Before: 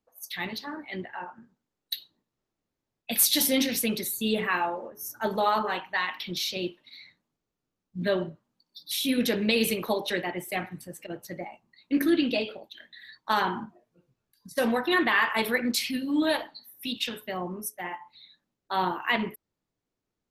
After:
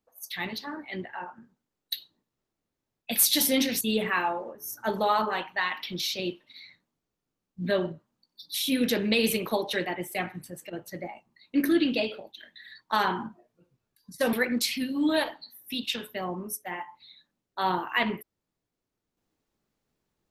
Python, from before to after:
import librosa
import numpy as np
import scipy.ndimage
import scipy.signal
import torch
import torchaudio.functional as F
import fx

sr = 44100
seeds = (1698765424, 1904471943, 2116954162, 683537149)

y = fx.edit(x, sr, fx.cut(start_s=3.81, length_s=0.37),
    fx.cut(start_s=14.7, length_s=0.76), tone=tone)